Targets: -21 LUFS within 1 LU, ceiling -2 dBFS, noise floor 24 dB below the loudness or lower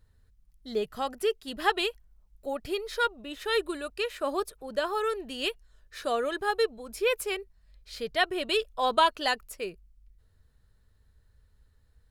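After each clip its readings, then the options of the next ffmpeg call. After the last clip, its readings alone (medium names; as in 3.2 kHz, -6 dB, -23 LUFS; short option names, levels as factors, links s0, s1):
loudness -30.0 LUFS; peak level -8.5 dBFS; loudness target -21.0 LUFS
-> -af "volume=2.82,alimiter=limit=0.794:level=0:latency=1"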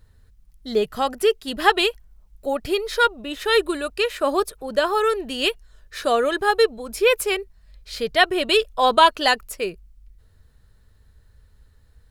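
loudness -21.0 LUFS; peak level -2.0 dBFS; noise floor -56 dBFS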